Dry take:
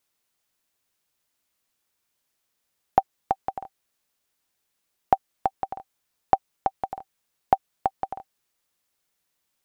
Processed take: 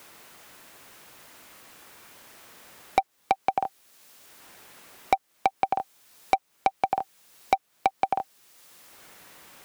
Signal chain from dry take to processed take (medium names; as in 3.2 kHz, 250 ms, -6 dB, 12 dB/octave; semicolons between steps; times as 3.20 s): bass shelf 87 Hz -11.5 dB; in parallel at +0.5 dB: compression, threshold -27 dBFS, peak gain reduction 13.5 dB; on the sum: saturation -18 dBFS, distortion -4 dB; three bands compressed up and down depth 70%; trim +5.5 dB